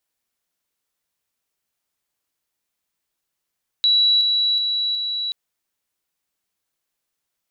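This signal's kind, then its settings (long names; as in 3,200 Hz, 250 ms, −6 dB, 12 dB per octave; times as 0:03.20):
level staircase 3,920 Hz −13 dBFS, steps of −3 dB, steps 4, 0.37 s 0.00 s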